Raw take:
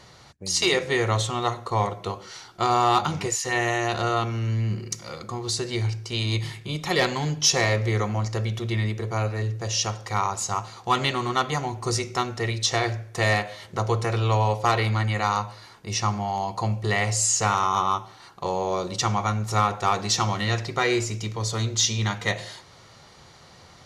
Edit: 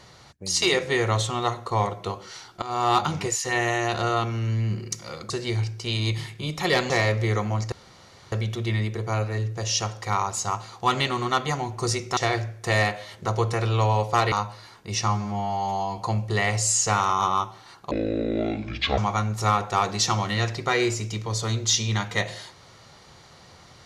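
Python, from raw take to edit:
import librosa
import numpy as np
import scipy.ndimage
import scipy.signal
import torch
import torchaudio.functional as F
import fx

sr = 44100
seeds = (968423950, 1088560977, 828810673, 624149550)

y = fx.edit(x, sr, fx.fade_in_from(start_s=2.62, length_s=0.32, floor_db=-19.0),
    fx.cut(start_s=5.3, length_s=0.26),
    fx.cut(start_s=7.16, length_s=0.38),
    fx.insert_room_tone(at_s=8.36, length_s=0.6),
    fx.cut(start_s=12.21, length_s=0.47),
    fx.cut(start_s=14.83, length_s=0.48),
    fx.stretch_span(start_s=16.07, length_s=0.45, factor=2.0),
    fx.speed_span(start_s=18.45, length_s=0.63, speed=0.59), tone=tone)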